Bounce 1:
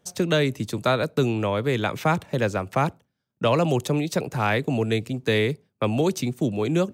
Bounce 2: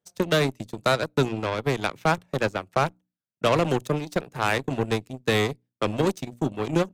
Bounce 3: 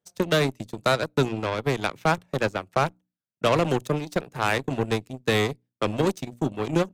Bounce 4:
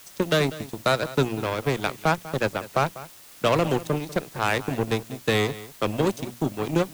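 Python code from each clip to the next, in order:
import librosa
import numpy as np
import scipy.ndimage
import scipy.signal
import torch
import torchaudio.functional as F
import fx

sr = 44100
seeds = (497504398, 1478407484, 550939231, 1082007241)

y1 = fx.hum_notches(x, sr, base_hz=60, count=5)
y1 = fx.cheby_harmonics(y1, sr, harmonics=(7,), levels_db=(-18,), full_scale_db=-9.0)
y1 = fx.wow_flutter(y1, sr, seeds[0], rate_hz=2.1, depth_cents=25.0)
y2 = y1
y3 = fx.quant_dither(y2, sr, seeds[1], bits=8, dither='triangular')
y3 = y3 + 10.0 ** (-17.0 / 20.0) * np.pad(y3, (int(195 * sr / 1000.0), 0))[:len(y3)]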